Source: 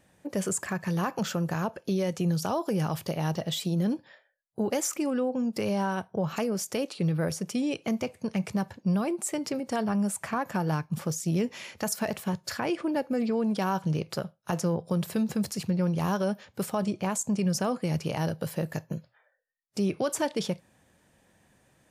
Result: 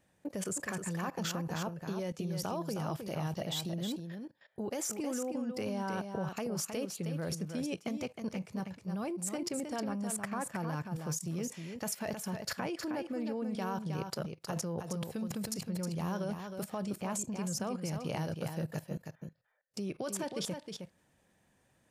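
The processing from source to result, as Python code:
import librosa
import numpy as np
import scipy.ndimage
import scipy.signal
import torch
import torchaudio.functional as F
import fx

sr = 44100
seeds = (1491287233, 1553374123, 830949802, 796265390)

p1 = fx.level_steps(x, sr, step_db=18)
y = p1 + fx.echo_single(p1, sr, ms=314, db=-6.5, dry=0)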